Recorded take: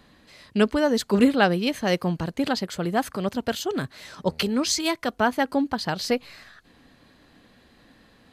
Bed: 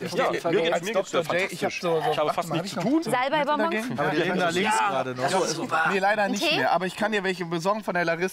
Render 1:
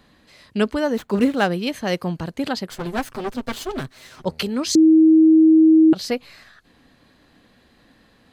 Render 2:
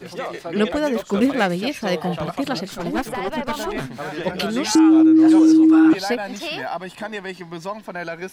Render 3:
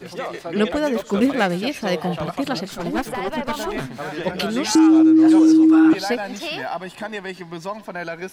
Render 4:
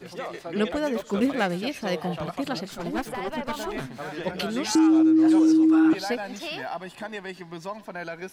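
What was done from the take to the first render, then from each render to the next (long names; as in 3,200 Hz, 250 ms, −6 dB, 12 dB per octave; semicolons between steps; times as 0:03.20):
0:00.94–0:01.49: running median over 9 samples; 0:02.70–0:04.25: lower of the sound and its delayed copy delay 7.8 ms; 0:04.75–0:05.93: beep over 318 Hz −8.5 dBFS
mix in bed −5 dB
feedback echo with a high-pass in the loop 119 ms, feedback 53%, level −22.5 dB
level −5.5 dB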